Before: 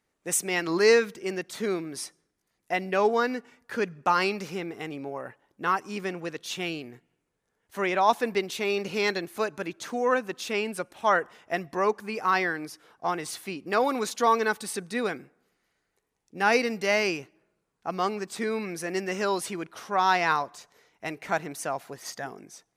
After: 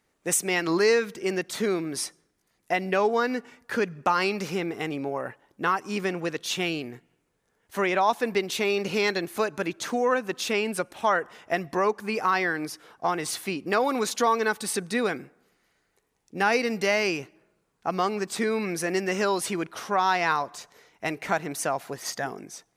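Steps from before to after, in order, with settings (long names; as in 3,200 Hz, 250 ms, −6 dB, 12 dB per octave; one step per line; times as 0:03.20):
downward compressor 2 to 1, threshold −29 dBFS, peak gain reduction 8 dB
level +5.5 dB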